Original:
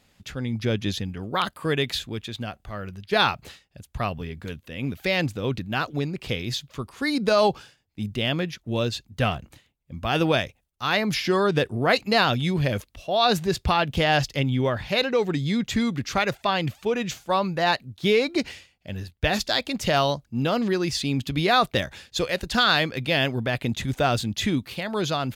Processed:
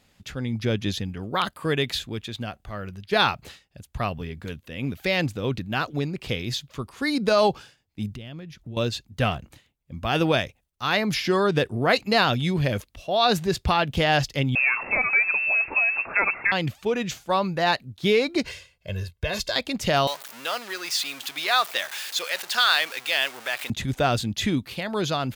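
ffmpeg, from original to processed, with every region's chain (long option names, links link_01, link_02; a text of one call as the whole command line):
ffmpeg -i in.wav -filter_complex "[0:a]asettb=1/sr,asplit=3[link_01][link_02][link_03];[link_01]atrim=end=8.154[link_04];[link_02]atrim=start=8.15:end=8.77,asetpts=PTS-STARTPTS,afade=type=in:duration=0.004:curve=qsin,afade=type=out:start_time=0.616:duration=0.004:curve=qsin,acompressor=threshold=-43dB:ratio=4:attack=3.2:release=140:knee=1:detection=peak,lowshelf=frequency=200:gain=11.5[link_05];[link_03]atrim=start=8.766[link_06];[link_04][link_05]acrossfade=duration=0.004:curve1=hsin:curve2=qsin[link_07];[link_07][link_06]acrossfade=duration=0.004:curve1=qsin:curve2=hsin,asettb=1/sr,asplit=3[link_08][link_09][link_10];[link_08]atrim=end=14.554[link_11];[link_09]atrim=start=14.55:end=16.52,asetpts=PTS-STARTPTS,afade=type=in:duration=0.004:curve=qsin,afade=type=out:start_time=1.966:duration=0.004:curve=qsin,aeval=exprs='val(0)+0.5*0.0335*sgn(val(0))':channel_layout=same,highpass=110,lowpass=frequency=2400:width_type=q:width=0.5098,lowpass=frequency=2400:width_type=q:width=0.6013,lowpass=frequency=2400:width_type=q:width=0.9,lowpass=frequency=2400:width_type=q:width=2.563,afreqshift=-2800[link_12];[link_10]atrim=start=16.516[link_13];[link_11][link_12]acrossfade=duration=0.004:curve1=hsin:curve2=qsin[link_14];[link_14][link_13]acrossfade=duration=0.004:curve1=qsin:curve2=hsin,asettb=1/sr,asplit=3[link_15][link_16][link_17];[link_15]atrim=end=18.454[link_18];[link_16]atrim=start=18.45:end=19.56,asetpts=PTS-STARTPTS,afade=type=in:duration=0.004:curve=qsin,afade=type=out:start_time=1.106:duration=0.004:curve=qsin,aecho=1:1:1.9:0.93,atrim=end_sample=48951,acompressor=threshold=-24dB:ratio=3:attack=3.2:release=140:knee=1:detection=peak[link_19];[link_17]atrim=start=19.556[link_20];[link_18][link_19]acrossfade=duration=0.004:curve1=hsin:curve2=qsin[link_21];[link_21][link_20]acrossfade=duration=0.004:curve1=qsin:curve2=hsin,asettb=1/sr,asplit=3[link_22][link_23][link_24];[link_22]atrim=end=20.074[link_25];[link_23]atrim=start=20.07:end=23.7,asetpts=PTS-STARTPTS,afade=type=in:duration=0.004:curve=qsin,afade=type=out:start_time=3.626:duration=0.004:curve=qsin,aeval=exprs='val(0)+0.5*0.0335*sgn(val(0))':channel_layout=same,highpass=950,highshelf=frequency=12000:gain=4.5[link_26];[link_24]atrim=start=23.696[link_27];[link_25][link_26]acrossfade=duration=0.004:curve1=hsin:curve2=qsin[link_28];[link_28][link_27]acrossfade=duration=0.004:curve1=qsin:curve2=hsin" out.wav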